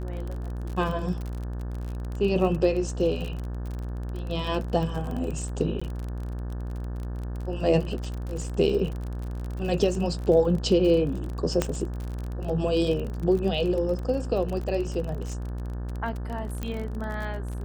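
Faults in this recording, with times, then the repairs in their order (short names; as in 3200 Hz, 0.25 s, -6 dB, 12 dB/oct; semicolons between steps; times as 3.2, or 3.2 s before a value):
buzz 60 Hz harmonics 30 -32 dBFS
crackle 35/s -31 dBFS
5.8–5.82 gap 15 ms
11.62 pop -10 dBFS
16.63 pop -17 dBFS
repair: de-click; de-hum 60 Hz, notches 30; interpolate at 5.8, 15 ms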